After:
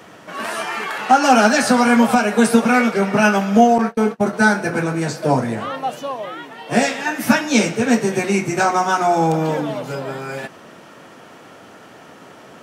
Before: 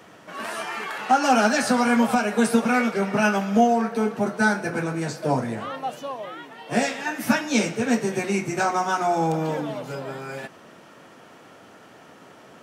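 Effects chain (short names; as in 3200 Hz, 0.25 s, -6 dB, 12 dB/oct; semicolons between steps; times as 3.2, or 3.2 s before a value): 3.78–4.33 gate -26 dBFS, range -34 dB; gain +6 dB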